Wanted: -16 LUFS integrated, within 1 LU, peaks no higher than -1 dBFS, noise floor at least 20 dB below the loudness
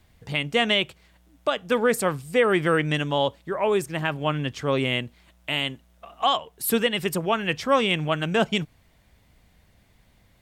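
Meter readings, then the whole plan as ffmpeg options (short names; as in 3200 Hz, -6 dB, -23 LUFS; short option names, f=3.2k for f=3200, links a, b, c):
loudness -24.0 LUFS; peak -10.0 dBFS; loudness target -16.0 LUFS
-> -af "volume=8dB"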